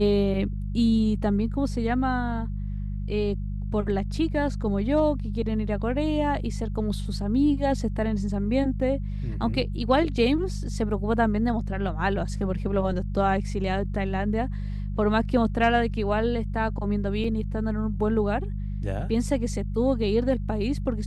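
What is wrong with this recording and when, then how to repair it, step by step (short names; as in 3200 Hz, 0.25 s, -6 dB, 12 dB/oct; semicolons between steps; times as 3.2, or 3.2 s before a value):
hum 50 Hz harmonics 4 -30 dBFS
17.24 gap 3.5 ms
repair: de-hum 50 Hz, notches 4; interpolate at 17.24, 3.5 ms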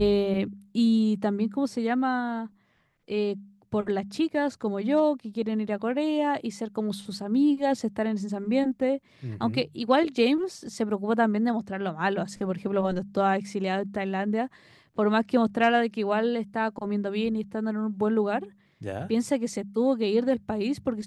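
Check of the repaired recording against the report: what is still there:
none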